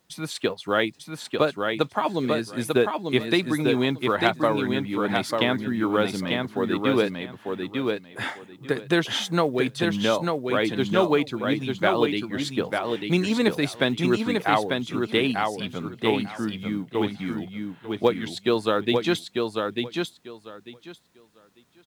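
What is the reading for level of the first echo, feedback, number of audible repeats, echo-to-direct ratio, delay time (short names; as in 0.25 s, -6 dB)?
-4.0 dB, 18%, 3, -4.0 dB, 0.895 s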